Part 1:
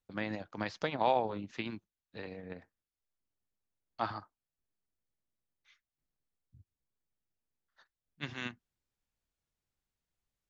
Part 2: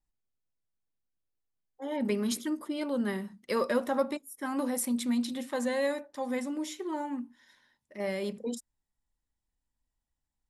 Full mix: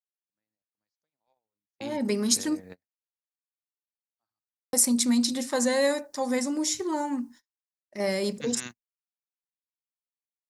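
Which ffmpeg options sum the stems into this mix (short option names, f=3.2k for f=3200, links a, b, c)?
-filter_complex "[0:a]adelay=200,volume=-1dB[a];[1:a]agate=range=-36dB:threshold=-53dB:ratio=16:detection=peak,lowpass=4.8k,dynaudnorm=f=850:g=5:m=7dB,volume=-1.5dB,asplit=3[b][c][d];[b]atrim=end=2.6,asetpts=PTS-STARTPTS,afade=t=out:st=2.596:d=0.004:c=hsin[e];[c]atrim=start=2.6:end=4.73,asetpts=PTS-STARTPTS,volume=0[f];[d]atrim=start=4.73,asetpts=PTS-STARTPTS,afade=t=in:d=0.004:c=hsin[g];[e][f][g]concat=n=3:v=0:a=1,asplit=2[h][i];[i]apad=whole_len=471467[j];[a][j]sidechaingate=range=-33dB:threshold=-50dB:ratio=16:detection=peak[k];[k][h]amix=inputs=2:normalize=0,agate=range=-22dB:threshold=-57dB:ratio=16:detection=peak,aexciter=amount=9.1:drive=4.3:freq=4.7k"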